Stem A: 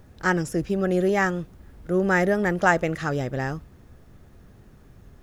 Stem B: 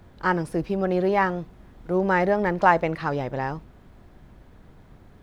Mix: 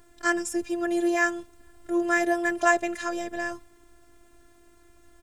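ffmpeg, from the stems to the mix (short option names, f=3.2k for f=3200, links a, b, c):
-filter_complex "[0:a]equalizer=f=8.3k:w=2.1:g=11,volume=2dB[a];[1:a]highpass=1.3k,volume=-1,adelay=1.6,volume=-3.5dB[b];[a][b]amix=inputs=2:normalize=0,afftfilt=real='hypot(re,im)*cos(PI*b)':imag='0':win_size=512:overlap=0.75,lowshelf=f=260:g=-5.5"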